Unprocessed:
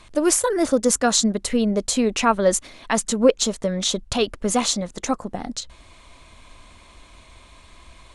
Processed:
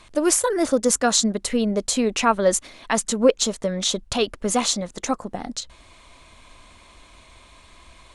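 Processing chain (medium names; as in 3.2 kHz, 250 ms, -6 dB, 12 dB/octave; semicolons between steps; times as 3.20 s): bass shelf 220 Hz -3.5 dB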